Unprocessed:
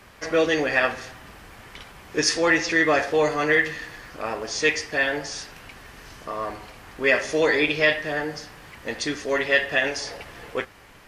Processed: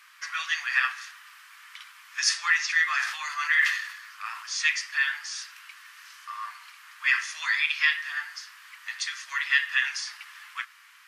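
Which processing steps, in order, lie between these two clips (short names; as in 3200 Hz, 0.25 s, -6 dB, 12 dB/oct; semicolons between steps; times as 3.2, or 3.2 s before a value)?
steep high-pass 1100 Hz 48 dB/oct; 2.91–4.65 sustainer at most 69 dB/s; gain -1.5 dB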